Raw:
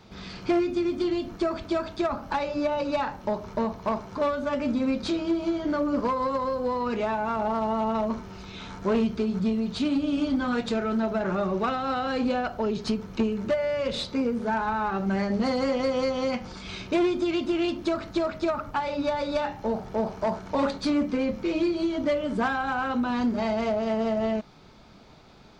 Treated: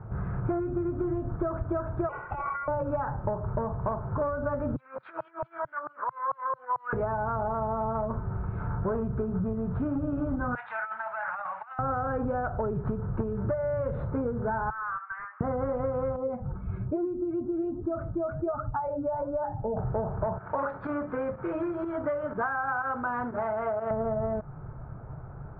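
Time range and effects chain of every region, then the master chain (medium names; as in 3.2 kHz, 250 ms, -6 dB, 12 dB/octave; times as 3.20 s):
2.09–2.68 s: compressor with a negative ratio -31 dBFS + band-pass 190–3300 Hz + ring modulator 1.7 kHz
4.76–6.93 s: compressor with a negative ratio -28 dBFS, ratio -0.5 + LFO high-pass saw down 4.5 Hz 800–5300 Hz
10.55–11.79 s: elliptic band-pass 850–4100 Hz + compressor with a negative ratio -37 dBFS, ratio -0.5 + resonant high shelf 1.8 kHz +11.5 dB, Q 1.5
14.70–15.41 s: Chebyshev high-pass 1.1 kHz, order 5 + hard clipper -33.5 dBFS
16.16–19.77 s: spectral contrast enhancement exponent 1.6 + flange 1.2 Hz, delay 2.2 ms, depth 6.7 ms, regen +84%
20.38–23.91 s: tilt EQ +4.5 dB/octave + volume shaper 123 bpm, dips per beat 1, -10 dB, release 64 ms
whole clip: elliptic low-pass 1.5 kHz, stop band 80 dB; resonant low shelf 170 Hz +8.5 dB, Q 3; compression, threshold -32 dBFS; trim +5.5 dB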